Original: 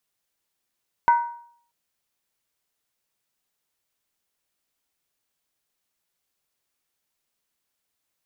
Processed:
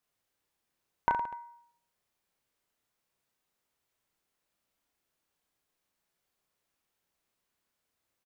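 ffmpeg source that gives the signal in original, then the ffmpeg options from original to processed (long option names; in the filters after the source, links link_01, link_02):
-f lavfi -i "aevalsrc='0.282*pow(10,-3*t/0.59)*sin(2*PI*946*t)+0.075*pow(10,-3*t/0.467)*sin(2*PI*1507.9*t)+0.02*pow(10,-3*t/0.404)*sin(2*PI*2020.7*t)+0.00531*pow(10,-3*t/0.389)*sin(2*PI*2172*t)+0.00141*pow(10,-3*t/0.362)*sin(2*PI*2509.7*t)':duration=0.63:sample_rate=44100"
-af "highshelf=frequency=2400:gain=-7.5,acompressor=threshold=-25dB:ratio=6,aecho=1:1:30|67.5|114.4|173|246.2:0.631|0.398|0.251|0.158|0.1"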